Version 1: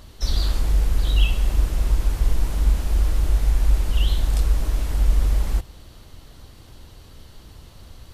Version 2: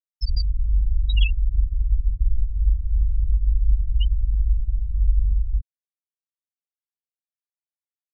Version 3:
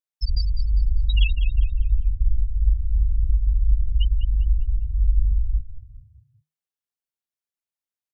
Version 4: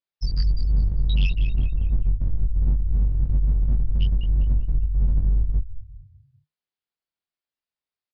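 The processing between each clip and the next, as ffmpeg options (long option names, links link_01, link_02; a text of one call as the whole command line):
ffmpeg -i in.wav -af "aemphasis=mode=production:type=75fm,afftfilt=real='re*gte(hypot(re,im),0.316)':imag='im*gte(hypot(re,im),0.316)':win_size=1024:overlap=0.75" out.wav
ffmpeg -i in.wav -filter_complex "[0:a]asplit=5[link_01][link_02][link_03][link_04][link_05];[link_02]adelay=200,afreqshift=-39,volume=-11dB[link_06];[link_03]adelay=400,afreqshift=-78,volume=-20.6dB[link_07];[link_04]adelay=600,afreqshift=-117,volume=-30.3dB[link_08];[link_05]adelay=800,afreqshift=-156,volume=-39.9dB[link_09];[link_01][link_06][link_07][link_08][link_09]amix=inputs=5:normalize=0" out.wav
ffmpeg -i in.wav -filter_complex "[0:a]aresample=11025,asoftclip=type=hard:threshold=-19.5dB,aresample=44100,asplit=2[link_01][link_02];[link_02]adelay=22,volume=-3dB[link_03];[link_01][link_03]amix=inputs=2:normalize=0" out.wav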